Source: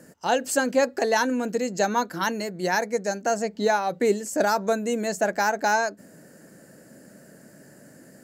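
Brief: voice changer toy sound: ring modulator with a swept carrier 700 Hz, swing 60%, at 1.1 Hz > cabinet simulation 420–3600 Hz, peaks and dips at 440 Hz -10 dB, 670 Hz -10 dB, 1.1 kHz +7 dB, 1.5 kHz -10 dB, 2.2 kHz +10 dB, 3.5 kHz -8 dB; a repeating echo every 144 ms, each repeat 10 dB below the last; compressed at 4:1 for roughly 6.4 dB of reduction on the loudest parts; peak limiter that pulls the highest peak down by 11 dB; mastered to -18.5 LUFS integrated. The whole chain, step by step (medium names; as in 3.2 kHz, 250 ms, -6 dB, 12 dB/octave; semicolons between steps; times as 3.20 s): compression 4:1, threshold -24 dBFS; peak limiter -25 dBFS; feedback delay 144 ms, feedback 32%, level -10 dB; ring modulator with a swept carrier 700 Hz, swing 60%, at 1.1 Hz; cabinet simulation 420–3600 Hz, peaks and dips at 440 Hz -10 dB, 670 Hz -10 dB, 1.1 kHz +7 dB, 1.5 kHz -10 dB, 2.2 kHz +10 dB, 3.5 kHz -8 dB; trim +20 dB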